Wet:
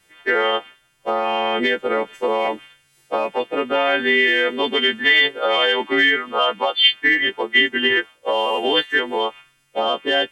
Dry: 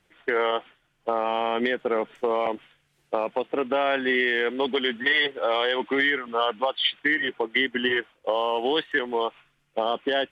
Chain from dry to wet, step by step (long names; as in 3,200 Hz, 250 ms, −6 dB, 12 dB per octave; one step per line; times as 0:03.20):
every partial snapped to a pitch grid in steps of 2 semitones
level +4.5 dB